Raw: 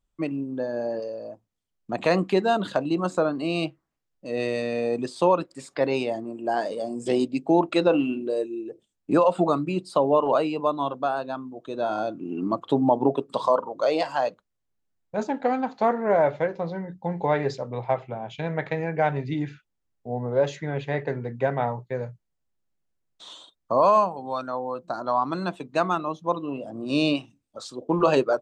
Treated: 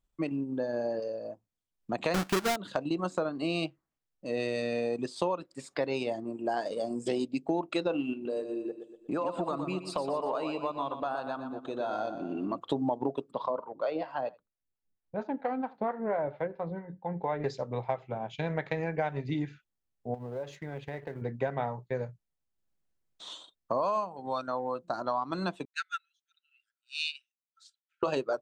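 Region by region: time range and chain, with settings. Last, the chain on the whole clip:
2.14–2.56 s: square wave that keeps the level + peaking EQ 1.4 kHz +7 dB 0.39 oct
8.13–12.58 s: peaking EQ 1.2 kHz +4.5 dB 2.7 oct + compression 2:1, threshold -33 dBFS + feedback delay 120 ms, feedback 48%, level -8 dB
13.31–17.44 s: distance through air 330 m + delay 82 ms -21.5 dB + harmonic tremolo 4.4 Hz, crossover 510 Hz
20.14–21.22 s: companding laws mixed up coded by A + treble shelf 8 kHz -4 dB + compression 4:1, threshold -34 dBFS
25.65–28.03 s: brick-wall FIR high-pass 1.3 kHz + upward expansion 2.5:1, over -40 dBFS
whole clip: dynamic bell 4.9 kHz, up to +3 dB, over -44 dBFS, Q 0.79; transient shaper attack 0 dB, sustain -5 dB; compression 4:1, threshold -26 dBFS; trim -1.5 dB

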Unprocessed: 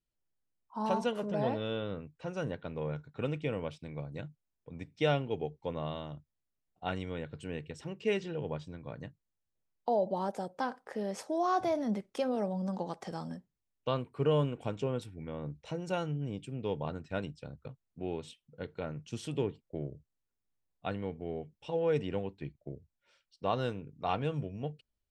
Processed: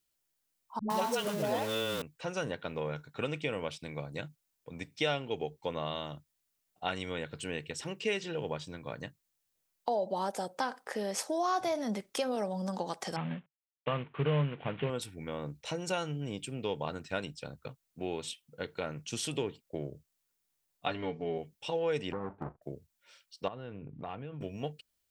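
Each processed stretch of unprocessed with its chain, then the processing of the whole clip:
0.79–2.02 s: jump at every zero crossing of -40.5 dBFS + phase dispersion highs, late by 111 ms, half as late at 360 Hz
13.16–14.90 s: CVSD coder 16 kbps + peaking EQ 150 Hz +11.5 dB 0.49 oct
20.86–21.38 s: low-pass 5.7 kHz 24 dB/octave + comb 7 ms, depth 87%
22.12–22.62 s: square wave that keeps the level + low-pass 1.2 kHz 24 dB/octave + compression 5:1, threshold -34 dBFS
23.48–24.41 s: low-pass 2.9 kHz 24 dB/octave + bass shelf 390 Hz +11.5 dB + compression 10:1, threshold -40 dBFS
whole clip: tilt EQ +2.5 dB/octave; compression 2:1, threshold -38 dBFS; trim +6 dB

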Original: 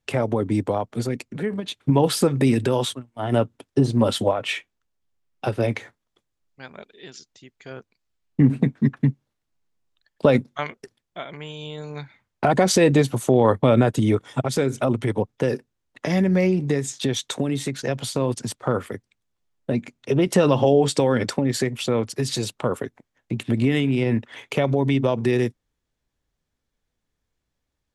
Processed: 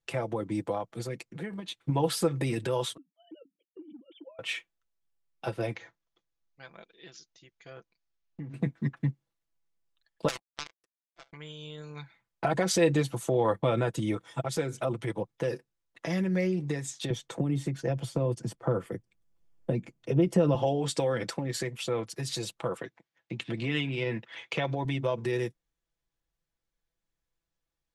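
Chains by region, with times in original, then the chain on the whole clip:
2.97–4.39 s: formants replaced by sine waves + cascade formant filter i + compression 12:1, threshold -33 dBFS
5.75–8.54 s: steep low-pass 7 kHz 96 dB/octave + compression 3:1, threshold -31 dBFS
10.28–11.33 s: high-pass 310 Hz 24 dB/octave + power-law waveshaper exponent 3 + spectrum-flattening compressor 4:1
17.10–20.55 s: tilt shelf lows +7 dB, about 720 Hz + band-stop 3.9 kHz, Q 10 + three bands compressed up and down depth 40%
22.77–24.85 s: band-pass 100–4400 Hz + treble shelf 2.1 kHz +8 dB
whole clip: peaking EQ 210 Hz -4 dB 1.8 oct; comb 6 ms, depth 61%; trim -8.5 dB

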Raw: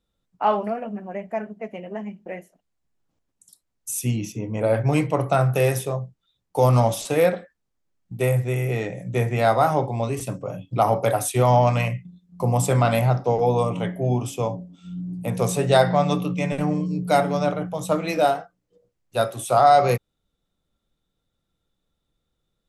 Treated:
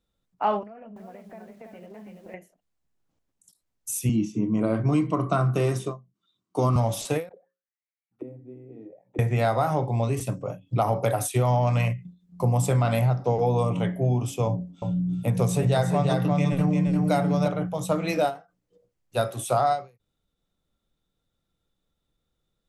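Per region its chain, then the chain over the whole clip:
0.63–2.34 s: compression 8:1, threshold -39 dBFS + distance through air 86 m + bit-crushed delay 332 ms, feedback 35%, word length 10-bit, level -4 dB
4.09–6.76 s: cabinet simulation 120–9100 Hz, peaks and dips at 210 Hz +9 dB, 330 Hz +9 dB, 520 Hz -8 dB, 1.1 kHz +8 dB, 2 kHz -5 dB + comb of notches 850 Hz
7.29–9.19 s: hum notches 60/120/180/240/300/360/420/480/540 Hz + dynamic bell 1.4 kHz, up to -5 dB, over -43 dBFS, Q 1.2 + auto-wah 280–2300 Hz, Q 8.1, down, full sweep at -22.5 dBFS
14.47–17.48 s: bass shelf 170 Hz +5.5 dB + delay 349 ms -5 dB
whole clip: dynamic bell 110 Hz, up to +5 dB, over -34 dBFS, Q 0.76; compression, threshold -17 dBFS; endings held to a fixed fall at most 200 dB/s; trim -1.5 dB

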